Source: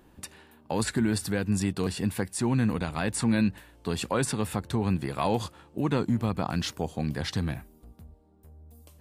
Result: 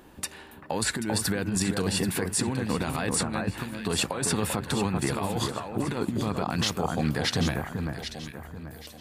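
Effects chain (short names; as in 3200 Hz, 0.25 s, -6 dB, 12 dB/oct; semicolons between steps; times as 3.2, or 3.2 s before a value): low shelf 230 Hz -6.5 dB; negative-ratio compressor -31 dBFS, ratio -0.5; echo with dull and thin repeats by turns 0.392 s, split 1700 Hz, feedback 58%, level -5 dB; limiter -20.5 dBFS, peak gain reduction 8 dB; gain +5.5 dB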